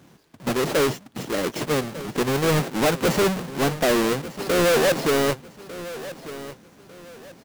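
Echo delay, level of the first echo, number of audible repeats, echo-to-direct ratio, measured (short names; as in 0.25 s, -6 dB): 1.199 s, -15.5 dB, 3, -15.0 dB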